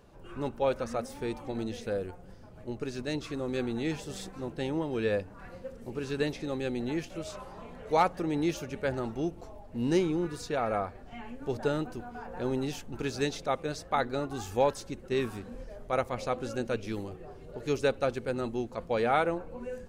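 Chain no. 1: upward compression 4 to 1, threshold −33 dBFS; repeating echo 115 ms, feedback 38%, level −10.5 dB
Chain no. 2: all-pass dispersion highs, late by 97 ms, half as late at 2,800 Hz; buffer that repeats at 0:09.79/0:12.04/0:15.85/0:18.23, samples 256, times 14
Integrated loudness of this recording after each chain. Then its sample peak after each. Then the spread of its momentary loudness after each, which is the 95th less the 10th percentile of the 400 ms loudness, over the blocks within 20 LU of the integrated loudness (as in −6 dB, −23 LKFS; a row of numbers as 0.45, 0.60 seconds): −32.5, −32.5 LKFS; −13.0, −13.0 dBFS; 12, 15 LU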